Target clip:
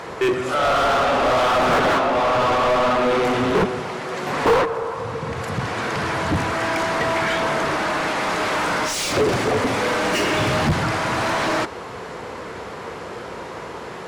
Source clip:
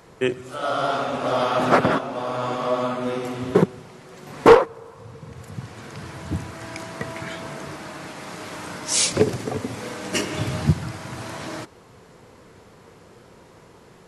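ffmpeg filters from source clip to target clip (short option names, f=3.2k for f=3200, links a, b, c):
-filter_complex "[0:a]equalizer=f=61:t=o:w=0.89:g=13,asplit=2[a][b];[b]highpass=f=720:p=1,volume=36dB,asoftclip=type=tanh:threshold=-2dB[c];[a][c]amix=inputs=2:normalize=0,lowpass=f=2k:p=1,volume=-6dB,volume=-8dB"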